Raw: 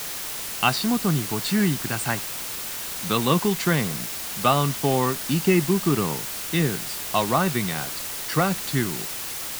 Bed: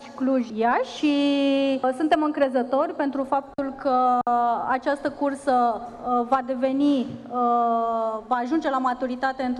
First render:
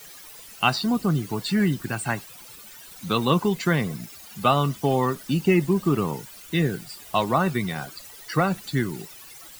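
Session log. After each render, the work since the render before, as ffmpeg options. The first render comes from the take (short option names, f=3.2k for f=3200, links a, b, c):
-af "afftdn=nr=16:nf=-32"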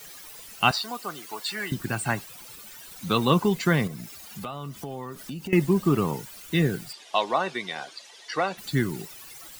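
-filter_complex "[0:a]asettb=1/sr,asplit=3[a][b][c];[a]atrim=end=0.714[d];[b]atrim=start=0.71:end=1.72,asetpts=PTS-STARTPTS,afade=t=in:d=0.004:c=qsin,afade=t=out:st=1.006:d=0.004:c=qsin,highpass=700[e];[c]atrim=start=1.716[f];[d][e]acrossfade=d=0.004:c1=hsin:c2=qsin[g];[g][f]acrossfade=d=0.004:c1=qsin:c2=hsin,asettb=1/sr,asplit=3[h][i][j];[h]atrim=end=3.874[k];[i]atrim=start=3.87:end=5.53,asetpts=PTS-STARTPTS,afade=t=in:d=0.004:c=qsin,afade=t=out:st=1.656:d=0.004:c=qsin,acompressor=threshold=-33dB:ratio=5:attack=3.2:release=140:knee=1:detection=peak[l];[j]atrim=start=5.526[m];[k][l]acrossfade=d=0.004:c1=hsin:c2=qsin[n];[n][m]acrossfade=d=0.004:c1=qsin:c2=hsin,asplit=3[o][p][q];[o]afade=t=out:st=6.92:d=0.02[r];[p]highpass=460,equalizer=f=1.3k:t=q:w=4:g=-6,equalizer=f=3.4k:t=q:w=4:g=4,equalizer=f=7.7k:t=q:w=4:g=-6,lowpass=f=7.8k:w=0.5412,lowpass=f=7.8k:w=1.3066,afade=t=in:st=6.92:d=0.02,afade=t=out:st=8.57:d=0.02[s];[q]afade=t=in:st=8.57:d=0.02[t];[r][s][t]amix=inputs=3:normalize=0"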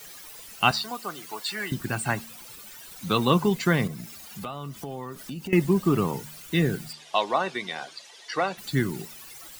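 -af "bandreject=f=75.89:t=h:w=4,bandreject=f=151.78:t=h:w=4,bandreject=f=227.67:t=h:w=4"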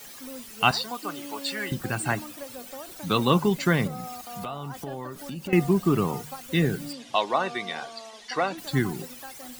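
-filter_complex "[1:a]volume=-19.5dB[a];[0:a][a]amix=inputs=2:normalize=0"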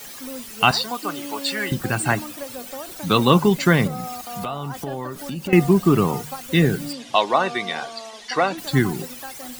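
-af "volume=6dB,alimiter=limit=-1dB:level=0:latency=1"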